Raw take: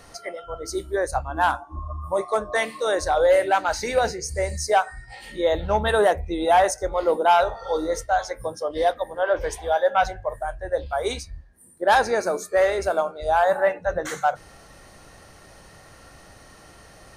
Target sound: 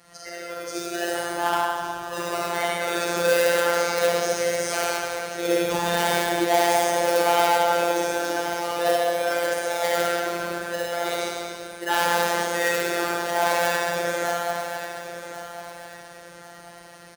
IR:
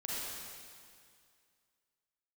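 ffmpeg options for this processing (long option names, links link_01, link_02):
-filter_complex "[0:a]acrossover=split=700|2700[link_01][link_02][link_03];[link_01]acrusher=samples=30:mix=1:aa=0.000001:lfo=1:lforange=30:lforate=0.41[link_04];[link_04][link_02][link_03]amix=inputs=3:normalize=0[link_05];[1:a]atrim=start_sample=2205[link_06];[link_05][link_06]afir=irnorm=-1:irlink=0,asplit=2[link_07][link_08];[link_08]aeval=exprs='(mod(4.47*val(0)+1,2)-1)/4.47':channel_layout=same,volume=-6dB[link_09];[link_07][link_09]amix=inputs=2:normalize=0,aecho=1:1:1089|2178|3267|4356:0.266|0.0958|0.0345|0.0124,afftfilt=real='hypot(re,im)*cos(PI*b)':imag='0':win_size=1024:overlap=0.75,highpass=frequency=48:width=0.5412,highpass=frequency=48:width=1.3066,volume=-2dB"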